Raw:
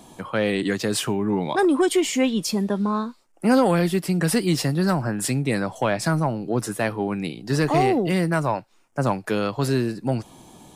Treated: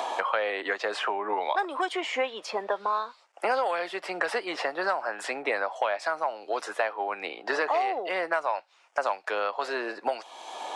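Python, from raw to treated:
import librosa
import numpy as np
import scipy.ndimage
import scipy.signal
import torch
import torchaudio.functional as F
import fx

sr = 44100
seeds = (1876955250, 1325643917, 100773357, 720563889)

y = scipy.signal.sosfilt(scipy.signal.butter(4, 610.0, 'highpass', fs=sr, output='sos'), x)
y = fx.spacing_loss(y, sr, db_at_10k=27)
y = fx.band_squash(y, sr, depth_pct=100)
y = F.gain(torch.from_numpy(y), 2.5).numpy()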